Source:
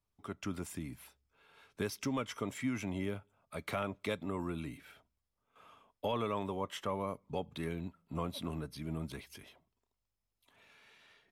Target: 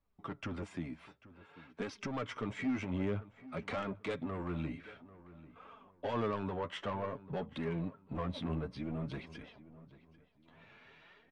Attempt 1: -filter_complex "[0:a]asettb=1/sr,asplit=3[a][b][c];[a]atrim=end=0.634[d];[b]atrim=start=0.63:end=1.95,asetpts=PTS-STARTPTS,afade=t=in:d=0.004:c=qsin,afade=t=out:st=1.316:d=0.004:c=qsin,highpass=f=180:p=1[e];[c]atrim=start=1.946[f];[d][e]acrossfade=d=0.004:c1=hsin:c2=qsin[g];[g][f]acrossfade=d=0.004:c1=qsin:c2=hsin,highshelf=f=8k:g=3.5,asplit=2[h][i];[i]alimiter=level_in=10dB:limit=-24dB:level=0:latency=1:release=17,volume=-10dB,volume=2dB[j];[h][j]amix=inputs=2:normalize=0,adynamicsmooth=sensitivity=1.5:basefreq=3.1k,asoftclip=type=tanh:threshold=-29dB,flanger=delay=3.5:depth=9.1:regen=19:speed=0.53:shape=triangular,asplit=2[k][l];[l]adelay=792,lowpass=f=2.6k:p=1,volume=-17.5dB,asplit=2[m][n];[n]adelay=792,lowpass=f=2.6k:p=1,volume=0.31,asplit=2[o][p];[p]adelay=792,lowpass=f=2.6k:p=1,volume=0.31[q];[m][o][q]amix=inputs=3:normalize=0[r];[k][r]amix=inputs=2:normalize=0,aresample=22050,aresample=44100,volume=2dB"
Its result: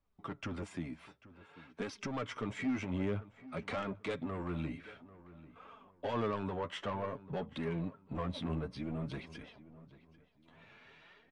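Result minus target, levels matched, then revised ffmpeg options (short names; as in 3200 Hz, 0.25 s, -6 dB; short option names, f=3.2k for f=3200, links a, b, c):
8000 Hz band +3.0 dB
-filter_complex "[0:a]asettb=1/sr,asplit=3[a][b][c];[a]atrim=end=0.634[d];[b]atrim=start=0.63:end=1.95,asetpts=PTS-STARTPTS,afade=t=in:d=0.004:c=qsin,afade=t=out:st=1.316:d=0.004:c=qsin,highpass=f=180:p=1[e];[c]atrim=start=1.946[f];[d][e]acrossfade=d=0.004:c1=hsin:c2=qsin[g];[g][f]acrossfade=d=0.004:c1=qsin:c2=hsin,highshelf=f=8k:g=-5.5,asplit=2[h][i];[i]alimiter=level_in=10dB:limit=-24dB:level=0:latency=1:release=17,volume=-10dB,volume=2dB[j];[h][j]amix=inputs=2:normalize=0,adynamicsmooth=sensitivity=1.5:basefreq=3.1k,asoftclip=type=tanh:threshold=-29dB,flanger=delay=3.5:depth=9.1:regen=19:speed=0.53:shape=triangular,asplit=2[k][l];[l]adelay=792,lowpass=f=2.6k:p=1,volume=-17.5dB,asplit=2[m][n];[n]adelay=792,lowpass=f=2.6k:p=1,volume=0.31,asplit=2[o][p];[p]adelay=792,lowpass=f=2.6k:p=1,volume=0.31[q];[m][o][q]amix=inputs=3:normalize=0[r];[k][r]amix=inputs=2:normalize=0,aresample=22050,aresample=44100,volume=2dB"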